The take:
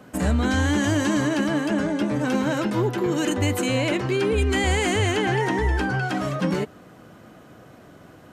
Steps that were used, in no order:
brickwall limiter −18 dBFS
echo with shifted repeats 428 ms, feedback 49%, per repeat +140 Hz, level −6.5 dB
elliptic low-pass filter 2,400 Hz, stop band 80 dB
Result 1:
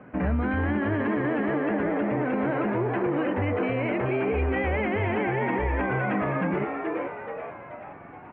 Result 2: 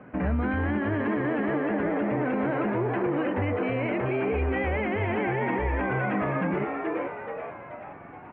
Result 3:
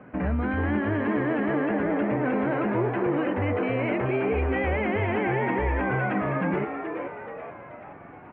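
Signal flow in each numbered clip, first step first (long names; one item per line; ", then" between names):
echo with shifted repeats, then elliptic low-pass filter, then brickwall limiter
echo with shifted repeats, then brickwall limiter, then elliptic low-pass filter
brickwall limiter, then echo with shifted repeats, then elliptic low-pass filter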